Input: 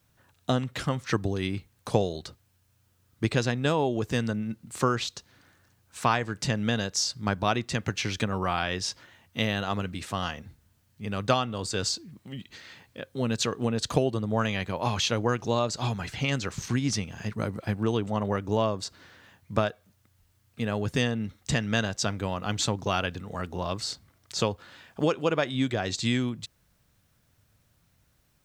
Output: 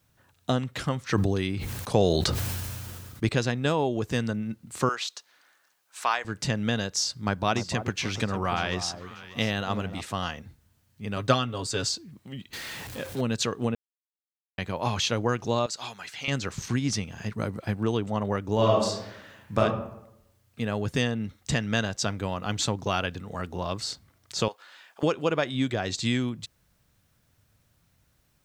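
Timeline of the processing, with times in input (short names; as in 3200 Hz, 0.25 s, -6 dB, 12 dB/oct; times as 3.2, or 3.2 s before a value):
1.02–3.29 sustainer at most 22 dB/s
4.89–6.25 HPF 700 Hz
6.97–10.01 echo with dull and thin repeats by turns 0.295 s, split 1100 Hz, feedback 54%, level -9.5 dB
11.16–11.87 comb 7.3 ms, depth 56%
12.53–13.21 zero-crossing step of -34.5 dBFS
13.75–14.58 mute
15.66–16.28 HPF 1400 Hz 6 dB/oct
18.54–19.59 reverb throw, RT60 0.83 s, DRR -4 dB
24.48–25.03 HPF 740 Hz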